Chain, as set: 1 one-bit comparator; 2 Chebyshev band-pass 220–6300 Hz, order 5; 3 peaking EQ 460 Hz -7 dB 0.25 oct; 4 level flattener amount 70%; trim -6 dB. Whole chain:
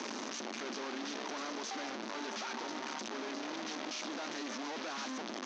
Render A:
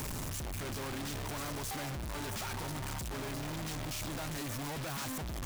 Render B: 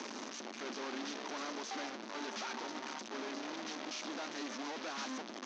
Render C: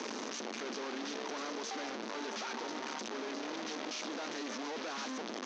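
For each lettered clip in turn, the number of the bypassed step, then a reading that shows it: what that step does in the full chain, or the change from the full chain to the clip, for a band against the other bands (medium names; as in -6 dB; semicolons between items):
2, 125 Hz band +25.0 dB; 4, momentary loudness spread change +2 LU; 3, 500 Hz band +2.0 dB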